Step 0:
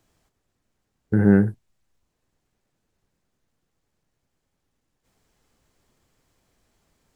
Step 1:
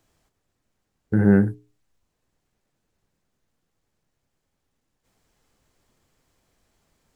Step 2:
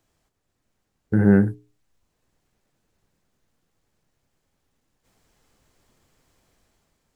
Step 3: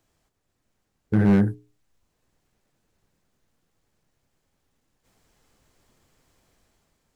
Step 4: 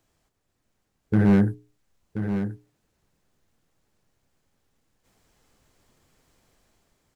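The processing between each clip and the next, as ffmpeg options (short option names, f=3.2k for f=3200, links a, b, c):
-af "bandreject=f=60:t=h:w=6,bandreject=f=120:t=h:w=6,bandreject=f=180:t=h:w=6,bandreject=f=240:t=h:w=6,bandreject=f=300:t=h:w=6,bandreject=f=360:t=h:w=6,bandreject=f=420:t=h:w=6"
-af "dynaudnorm=f=100:g=11:m=6.5dB,volume=-3dB"
-af "asoftclip=type=hard:threshold=-13dB"
-af "aecho=1:1:1030:0.355"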